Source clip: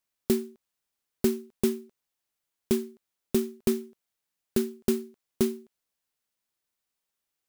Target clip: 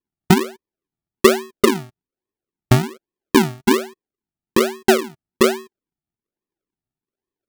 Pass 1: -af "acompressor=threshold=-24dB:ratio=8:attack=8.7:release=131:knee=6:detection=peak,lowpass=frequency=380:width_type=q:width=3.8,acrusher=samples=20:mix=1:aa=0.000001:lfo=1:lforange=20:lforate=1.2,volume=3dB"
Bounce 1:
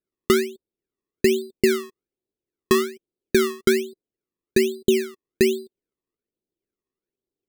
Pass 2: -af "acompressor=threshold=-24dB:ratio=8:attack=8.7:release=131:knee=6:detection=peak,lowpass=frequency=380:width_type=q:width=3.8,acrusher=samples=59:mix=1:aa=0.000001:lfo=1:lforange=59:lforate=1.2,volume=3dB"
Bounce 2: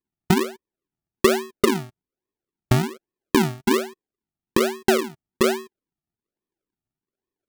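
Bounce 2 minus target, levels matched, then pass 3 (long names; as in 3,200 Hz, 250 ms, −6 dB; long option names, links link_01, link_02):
downward compressor: peak gain reduction +7 dB
-af "lowpass=frequency=380:width_type=q:width=3.8,acrusher=samples=59:mix=1:aa=0.000001:lfo=1:lforange=59:lforate=1.2,volume=3dB"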